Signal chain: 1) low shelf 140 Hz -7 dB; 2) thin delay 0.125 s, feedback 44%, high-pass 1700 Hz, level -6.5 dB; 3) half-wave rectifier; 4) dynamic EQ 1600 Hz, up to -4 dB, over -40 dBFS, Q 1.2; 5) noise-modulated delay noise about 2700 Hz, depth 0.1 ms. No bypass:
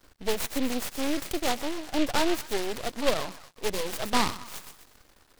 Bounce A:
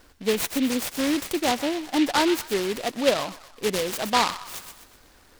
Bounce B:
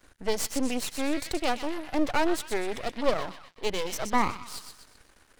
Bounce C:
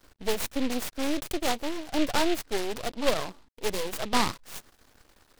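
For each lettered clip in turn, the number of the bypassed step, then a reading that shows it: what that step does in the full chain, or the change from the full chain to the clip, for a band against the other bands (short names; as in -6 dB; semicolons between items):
3, 125 Hz band -3.0 dB; 5, 4 kHz band -3.5 dB; 2, momentary loudness spread change -2 LU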